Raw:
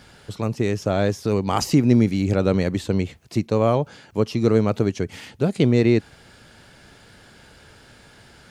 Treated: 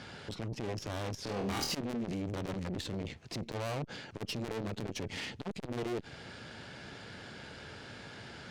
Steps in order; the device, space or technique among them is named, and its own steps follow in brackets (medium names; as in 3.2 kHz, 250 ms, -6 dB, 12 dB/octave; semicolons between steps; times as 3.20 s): valve radio (band-pass 87–5300 Hz; valve stage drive 35 dB, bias 0.5; transformer saturation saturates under 300 Hz); dynamic bell 1.1 kHz, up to -4 dB, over -55 dBFS, Q 1.1; 1.24–1.75 s: flutter echo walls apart 4.3 m, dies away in 0.42 s; trim +4.5 dB